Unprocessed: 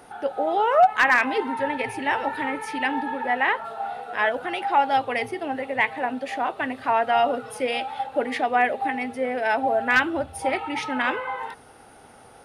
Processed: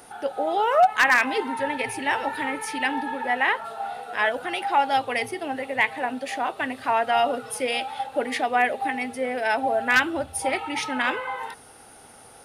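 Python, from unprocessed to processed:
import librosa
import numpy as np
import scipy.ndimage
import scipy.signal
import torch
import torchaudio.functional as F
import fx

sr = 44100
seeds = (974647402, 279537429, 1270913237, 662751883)

y = fx.high_shelf(x, sr, hz=4100.0, db=11.0)
y = y * 10.0 ** (-1.5 / 20.0)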